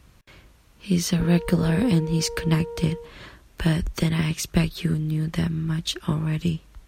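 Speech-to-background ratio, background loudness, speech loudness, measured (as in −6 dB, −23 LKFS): 11.5 dB, −35.5 LKFS, −24.0 LKFS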